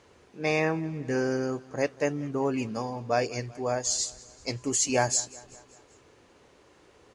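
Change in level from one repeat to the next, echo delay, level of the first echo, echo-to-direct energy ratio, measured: −5.0 dB, 193 ms, −21.5 dB, −20.0 dB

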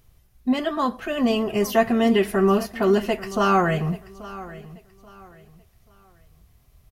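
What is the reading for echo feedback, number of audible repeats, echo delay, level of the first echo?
30%, 2, 833 ms, −17.5 dB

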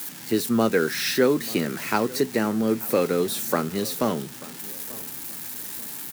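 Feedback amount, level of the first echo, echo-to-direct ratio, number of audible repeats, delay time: 34%, −20.5 dB, −20.0 dB, 2, 887 ms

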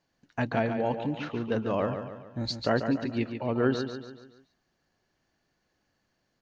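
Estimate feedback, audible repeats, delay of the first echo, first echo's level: 47%, 5, 142 ms, −8.0 dB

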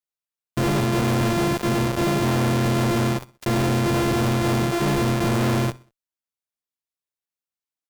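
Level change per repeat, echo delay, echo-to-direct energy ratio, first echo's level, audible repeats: −7.5 dB, 63 ms, −21.0 dB, −22.0 dB, 2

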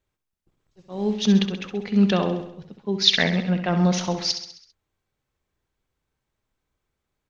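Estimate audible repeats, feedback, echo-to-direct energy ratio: 5, 54%, −7.5 dB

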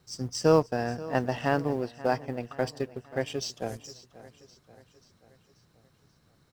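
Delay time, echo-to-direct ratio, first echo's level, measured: 534 ms, −16.5 dB, −18.0 dB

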